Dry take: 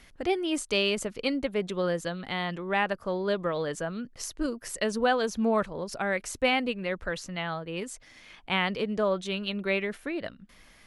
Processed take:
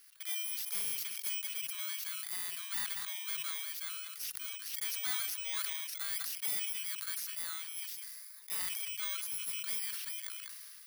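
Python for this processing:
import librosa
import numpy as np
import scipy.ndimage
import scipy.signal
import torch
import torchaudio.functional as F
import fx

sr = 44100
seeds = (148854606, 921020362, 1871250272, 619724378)

p1 = fx.bit_reversed(x, sr, seeds[0], block=16)
p2 = scipy.signal.sosfilt(scipy.signal.bessel(8, 2100.0, 'highpass', norm='mag', fs=sr, output='sos'), p1)
p3 = 10.0 ** (-28.5 / 20.0) * np.tanh(p2 / 10.0 ** (-28.5 / 20.0))
p4 = p3 + fx.echo_single(p3, sr, ms=195, db=-20.5, dry=0)
p5 = fx.sustainer(p4, sr, db_per_s=22.0)
y = p5 * 10.0 ** (-1.5 / 20.0)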